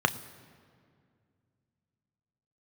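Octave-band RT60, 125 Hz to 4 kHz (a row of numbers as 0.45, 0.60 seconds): 3.2, 3.0, 2.4, 2.0, 1.8, 1.4 seconds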